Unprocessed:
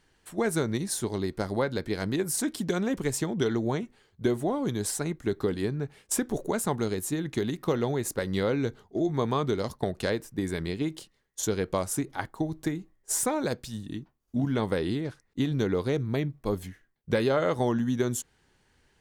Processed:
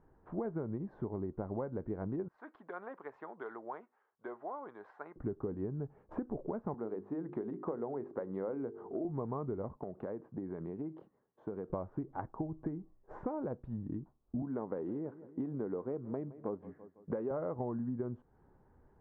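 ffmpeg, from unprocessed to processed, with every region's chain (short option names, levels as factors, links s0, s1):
-filter_complex "[0:a]asettb=1/sr,asplit=3[s0][s1][s2];[s0]atrim=end=2.284[s3];[s1]atrim=start=2.28:end=5.16,asetpts=PTS-STARTPTS,afade=t=in:d=0.004:c=qsin,afade=t=out:st=2.876:d=0.004:c=qsin,highpass=1300,asoftclip=type=hard:threshold=0.1[s4];[s2]atrim=start=5.156[s5];[s3][s4]acrossfade=d=0.004:c1=hsin:c2=qsin[s6];[s6][s5]acrossfade=d=0.004:c1=qsin:c2=hsin,asettb=1/sr,asplit=3[s7][s8][s9];[s7]atrim=end=6.744[s10];[s8]atrim=start=6.74:end=9.05,asetpts=PTS-STARTPTS,afade=t=in:d=0.004:c=qsin,afade=t=out:st=2.306:d=0.004:c=qsin,highpass=260,bandreject=f=50:t=h:w=6,bandreject=f=100:t=h:w=6,bandreject=f=150:t=h:w=6,bandreject=f=200:t=h:w=6,bandreject=f=250:t=h:w=6,bandreject=f=300:t=h:w=6,bandreject=f=350:t=h:w=6,bandreject=f=400:t=h:w=6,bandreject=f=450:t=h:w=6,acompressor=mode=upward:threshold=0.02:ratio=2.5:attack=3.2:release=140:knee=2.83:detection=peak[s11];[s9]atrim=start=9.046[s12];[s10][s11]acrossfade=d=0.004:c1=hsin:c2=qsin[s13];[s13][s12]acrossfade=d=0.004:c1=qsin:c2=hsin,asettb=1/sr,asplit=3[s14][s15][s16];[s14]atrim=end=9.774[s17];[s15]atrim=start=9.77:end=11.7,asetpts=PTS-STARTPTS,afade=t=in:d=0.004:c=qsin,afade=t=out:st=1.926:d=0.004:c=qsin,highpass=160,acompressor=threshold=0.00708:ratio=2:attack=3.2:release=140:knee=1:detection=peak[s18];[s16]atrim=start=11.696[s19];[s17][s18]acrossfade=d=0.004:c1=hsin:c2=qsin[s20];[s20][s19]acrossfade=d=0.004:c1=qsin:c2=hsin,asettb=1/sr,asplit=3[s21][s22][s23];[s21]atrim=end=14.424[s24];[s22]atrim=start=14.42:end=17.31,asetpts=PTS-STARTPTS,afade=t=in:d=0.004:c=qsin,afade=t=out:st=2.886:d=0.004:c=qsin,highpass=220,aecho=1:1:166|332|498:0.0891|0.0401|0.018,atrim=end_sample=127449[s25];[s23]atrim=start=17.306[s26];[s24][s25]acrossfade=d=0.004:c1=hsin:c2=qsin[s27];[s27][s26]acrossfade=d=0.004:c1=qsin:c2=hsin,lowpass=f=1100:w=0.5412,lowpass=f=1100:w=1.3066,acompressor=threshold=0.01:ratio=4,volume=1.41"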